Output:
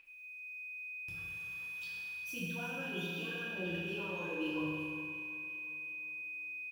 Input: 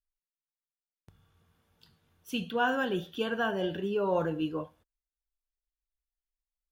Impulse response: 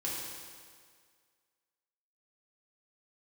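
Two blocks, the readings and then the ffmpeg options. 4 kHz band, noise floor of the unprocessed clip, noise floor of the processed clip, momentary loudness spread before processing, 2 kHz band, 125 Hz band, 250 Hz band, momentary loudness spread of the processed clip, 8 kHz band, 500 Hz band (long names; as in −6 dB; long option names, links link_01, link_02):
−5.0 dB, below −85 dBFS, −49 dBFS, 8 LU, −0.5 dB, −4.0 dB, −6.5 dB, 5 LU, can't be measured, −12.0 dB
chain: -filter_complex "[0:a]aphaser=in_gain=1:out_gain=1:delay=4.8:decay=0.73:speed=0.84:type=sinusoidal,areverse,acompressor=threshold=-37dB:ratio=6,areverse,tiltshelf=frequency=970:gain=-9,acrossover=split=440[link_01][link_02];[link_02]acompressor=threshold=-52dB:ratio=6[link_03];[link_01][link_03]amix=inputs=2:normalize=0,aeval=exprs='val(0)+0.00251*sin(2*PI*2500*n/s)':channel_layout=same,aecho=1:1:362|724|1086|1448|1810:0.224|0.119|0.0629|0.0333|0.0177[link_04];[1:a]atrim=start_sample=2205[link_05];[link_04][link_05]afir=irnorm=-1:irlink=0,volume=2.5dB"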